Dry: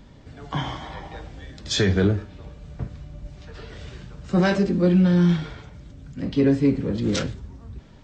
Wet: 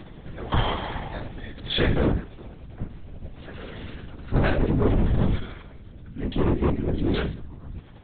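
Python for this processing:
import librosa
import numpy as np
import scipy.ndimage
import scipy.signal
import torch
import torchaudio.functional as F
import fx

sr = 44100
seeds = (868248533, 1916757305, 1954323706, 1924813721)

y = np.clip(x, -10.0 ** (-19.0 / 20.0), 10.0 ** (-19.0 / 20.0))
y = fx.lpc_vocoder(y, sr, seeds[0], excitation='whisper', order=10)
y = fx.rider(y, sr, range_db=4, speed_s=2.0)
y = y * 10.0 ** (1.5 / 20.0)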